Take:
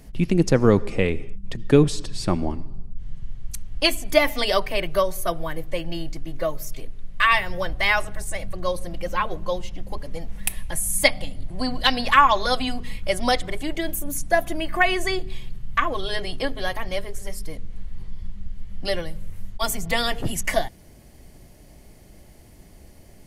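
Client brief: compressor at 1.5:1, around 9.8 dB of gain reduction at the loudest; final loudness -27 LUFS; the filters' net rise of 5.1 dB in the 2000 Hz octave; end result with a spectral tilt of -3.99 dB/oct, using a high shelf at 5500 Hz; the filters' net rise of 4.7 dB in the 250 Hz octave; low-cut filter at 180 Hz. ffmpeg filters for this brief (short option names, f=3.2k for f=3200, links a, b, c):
-af "highpass=180,equalizer=f=250:t=o:g=7.5,equalizer=f=2k:t=o:g=5.5,highshelf=f=5.5k:g=3.5,acompressor=threshold=-35dB:ratio=1.5,volume=1dB"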